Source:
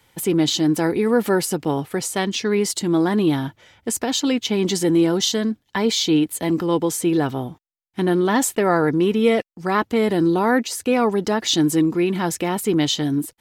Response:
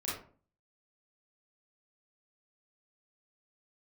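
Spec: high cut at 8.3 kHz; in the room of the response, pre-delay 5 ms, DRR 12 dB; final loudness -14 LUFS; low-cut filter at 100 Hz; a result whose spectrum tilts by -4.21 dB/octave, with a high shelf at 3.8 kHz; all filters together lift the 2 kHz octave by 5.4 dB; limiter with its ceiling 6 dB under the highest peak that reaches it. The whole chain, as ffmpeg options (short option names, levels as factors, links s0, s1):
-filter_complex "[0:a]highpass=100,lowpass=8300,equalizer=f=2000:t=o:g=8.5,highshelf=f=3800:g=-8,alimiter=limit=0.355:level=0:latency=1,asplit=2[s0][s1];[1:a]atrim=start_sample=2205,adelay=5[s2];[s1][s2]afir=irnorm=-1:irlink=0,volume=0.168[s3];[s0][s3]amix=inputs=2:normalize=0,volume=2.11"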